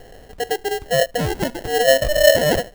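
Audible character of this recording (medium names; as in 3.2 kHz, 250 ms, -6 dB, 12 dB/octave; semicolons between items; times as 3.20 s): phasing stages 2, 2.3 Hz, lowest notch 790–1900 Hz; aliases and images of a low sample rate 1.2 kHz, jitter 0%; Vorbis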